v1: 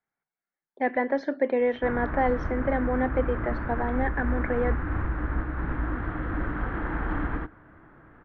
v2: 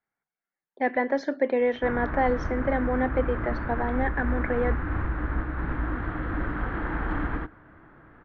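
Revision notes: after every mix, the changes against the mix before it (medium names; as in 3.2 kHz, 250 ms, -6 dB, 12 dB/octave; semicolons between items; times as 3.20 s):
master: remove distance through air 140 m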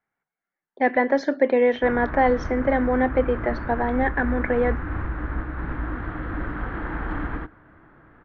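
speech +5.0 dB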